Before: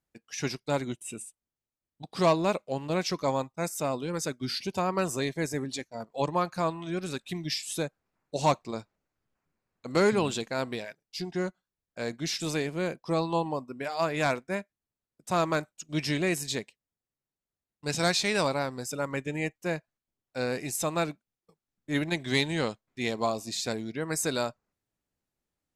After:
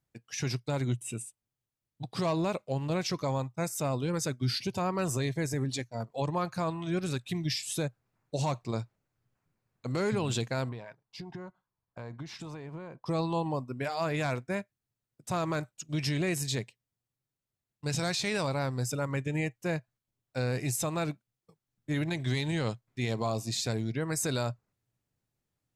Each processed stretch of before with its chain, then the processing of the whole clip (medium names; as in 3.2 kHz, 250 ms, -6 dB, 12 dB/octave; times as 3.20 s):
10.69–13.06 s: low-pass 1.8 kHz 6 dB/octave + peaking EQ 990 Hz +12 dB 0.69 oct + compression 10:1, threshold -40 dBFS
whole clip: peaking EQ 120 Hz +13.5 dB 0.58 oct; peak limiter -21.5 dBFS